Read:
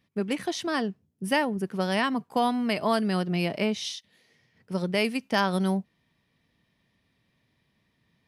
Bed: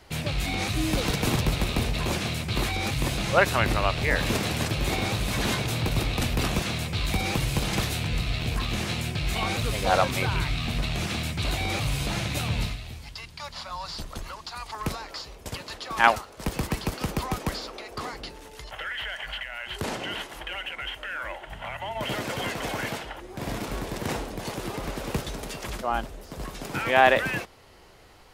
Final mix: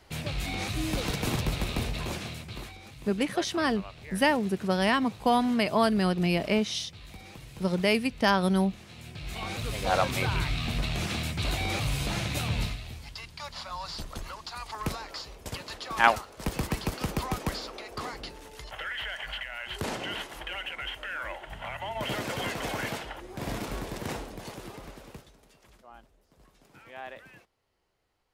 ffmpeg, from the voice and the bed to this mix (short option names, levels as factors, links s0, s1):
-filter_complex "[0:a]adelay=2900,volume=1.12[s0];[1:a]volume=4.73,afade=t=out:st=1.84:d=0.96:silence=0.16788,afade=t=in:st=8.89:d=1.32:silence=0.125893,afade=t=out:st=23.54:d=1.79:silence=0.0794328[s1];[s0][s1]amix=inputs=2:normalize=0"